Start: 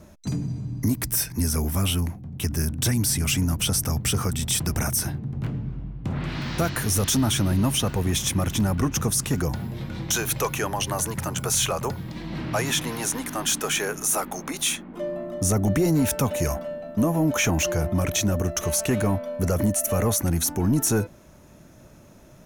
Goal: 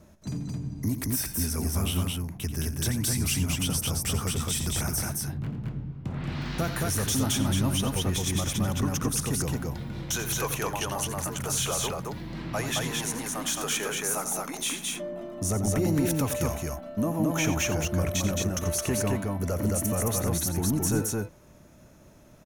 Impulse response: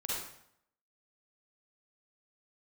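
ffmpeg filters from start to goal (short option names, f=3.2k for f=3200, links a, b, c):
-af "aecho=1:1:87.46|218.7:0.282|0.794,volume=-6dB"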